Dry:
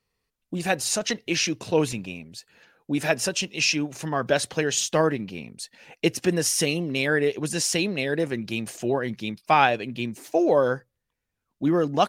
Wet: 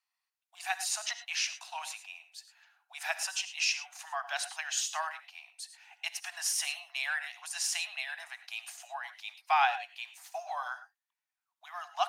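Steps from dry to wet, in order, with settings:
Butterworth high-pass 700 Hz 96 dB per octave
reverb whose tail is shaped and stops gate 130 ms rising, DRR 11 dB
level −7 dB

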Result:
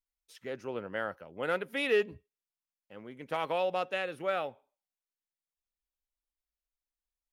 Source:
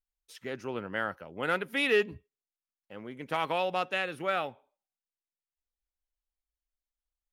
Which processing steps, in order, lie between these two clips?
dynamic equaliser 530 Hz, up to +6 dB, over −45 dBFS, Q 1.8
level −4.5 dB

